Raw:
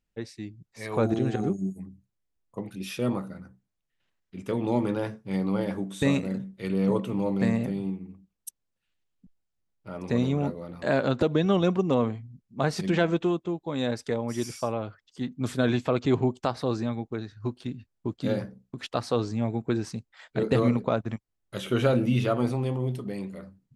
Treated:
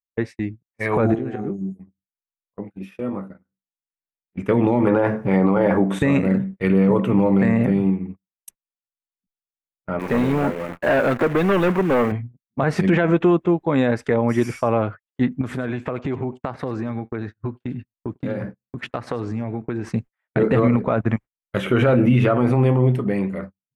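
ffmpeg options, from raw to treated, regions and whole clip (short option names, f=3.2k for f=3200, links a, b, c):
-filter_complex "[0:a]asettb=1/sr,asplit=3[a][b][c];[a]atrim=end=1.154[d];[b]atrim=start=1.15:end=4.37,asetpts=PTS-STARTPTS,afade=t=in:d=0.004:c=qsin,afade=t=out:st=3.216:d=0.004:c=qsin,equalizer=f=360:t=o:w=2.1:g=4.5,acompressor=threshold=-49dB:ratio=2:attack=3.2:release=140:knee=1:detection=peak,asplit=2[e][f];[f]adelay=20,volume=-9dB[g];[e][g]amix=inputs=2:normalize=0,atrim=end_sample=142002[h];[c]atrim=start=4.366[i];[d][h]acrossfade=d=0.004:c1=hsin:c2=qsin[j];[j][i]acrossfade=d=0.004:c1=qsin:c2=hsin,asettb=1/sr,asplit=3[k][l][m];[k]atrim=end=4.874[n];[l]atrim=start=4.87:end=5.99,asetpts=PTS-STARTPTS,afade=t=in:d=0.004:c=qsin,afade=t=out:st=1.116:d=0.004:c=qsin,equalizer=f=720:w=0.55:g=8.5,acompressor=mode=upward:threshold=-27dB:ratio=2.5:attack=3.2:release=140:knee=2.83:detection=peak[o];[m]atrim=start=5.986[p];[n][o]acrossfade=d=0.004:c1=hsin:c2=qsin[q];[q][p]acrossfade=d=0.004:c1=qsin:c2=hsin,asettb=1/sr,asplit=3[r][s][t];[r]atrim=end=9.994[u];[s]atrim=start=9.99:end=12.12,asetpts=PTS-STARTPTS,afade=t=in:d=0.004:c=qsin,afade=t=out:st=2.126:d=0.004:c=qsin,lowshelf=f=210:g=-10,asoftclip=type=hard:threshold=-26.5dB,acrusher=bits=8:dc=4:mix=0:aa=0.000001[v];[t]atrim=start=12.116[w];[u][v]acrossfade=d=0.004:c1=hsin:c2=qsin[x];[x][w]acrossfade=d=0.004:c1=qsin:c2=hsin,asettb=1/sr,asplit=3[y][z][aa];[y]atrim=end=15.414[ab];[z]atrim=start=15.41:end=19.89,asetpts=PTS-STARTPTS,afade=t=in:d=0.004:c=qsin,afade=t=out:st=4.476:d=0.004:c=qsin,acompressor=threshold=-35dB:ratio=5:attack=3.2:release=140:knee=1:detection=peak,aecho=1:1:102:0.133,atrim=end_sample=197568[ac];[aa]atrim=start=19.886[ad];[ab][ac]acrossfade=d=0.004:c1=hsin:c2=qsin[ae];[ae][ad]acrossfade=d=0.004:c1=qsin:c2=hsin,agate=range=-43dB:threshold=-42dB:ratio=16:detection=peak,highshelf=f=3k:t=q:w=1.5:g=-12,alimiter=level_in=19dB:limit=-1dB:release=50:level=0:latency=1,volume=-7dB"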